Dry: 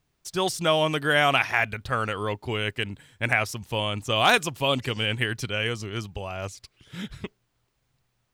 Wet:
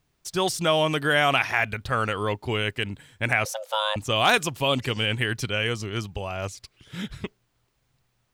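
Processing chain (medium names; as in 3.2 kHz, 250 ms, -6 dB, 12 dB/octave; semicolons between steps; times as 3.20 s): in parallel at -3 dB: peak limiter -17.5 dBFS, peak gain reduction 9 dB; 3.45–3.96 s: on the sum: frequency shift +430 Hz; trim -2.5 dB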